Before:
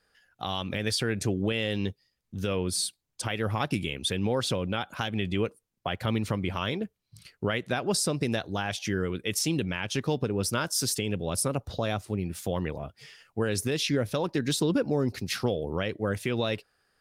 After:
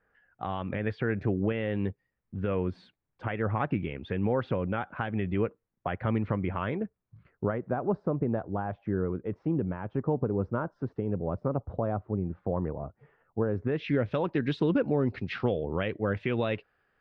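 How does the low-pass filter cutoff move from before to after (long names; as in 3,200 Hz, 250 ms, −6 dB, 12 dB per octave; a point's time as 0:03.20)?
low-pass filter 24 dB per octave
0:06.66 2,000 Hz
0:07.69 1,200 Hz
0:13.52 1,200 Hz
0:13.95 2,800 Hz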